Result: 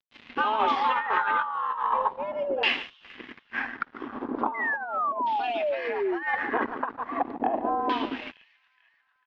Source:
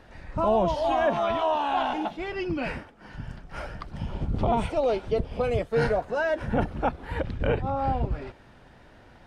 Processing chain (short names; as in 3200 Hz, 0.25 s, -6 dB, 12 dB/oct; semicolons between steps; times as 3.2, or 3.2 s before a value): frequency shift +210 Hz; tilt shelf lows -10 dB, about 1200 Hz; echo 0.146 s -12.5 dB; crossover distortion -43 dBFS; LPF 6200 Hz 12 dB/oct; bell 190 Hz +4.5 dB 1.3 oct; thin delay 0.447 s, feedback 71%, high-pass 4300 Hz, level -21.5 dB; LFO low-pass saw down 0.38 Hz 620–3600 Hz; painted sound fall, 4.54–6.23, 320–2100 Hz -23 dBFS; negative-ratio compressor -25 dBFS, ratio -0.5